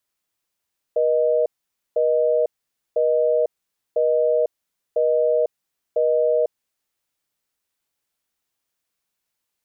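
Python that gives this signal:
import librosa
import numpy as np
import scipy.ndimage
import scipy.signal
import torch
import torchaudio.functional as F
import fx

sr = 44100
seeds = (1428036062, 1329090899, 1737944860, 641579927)

y = fx.call_progress(sr, length_s=5.95, kind='busy tone', level_db=-18.5)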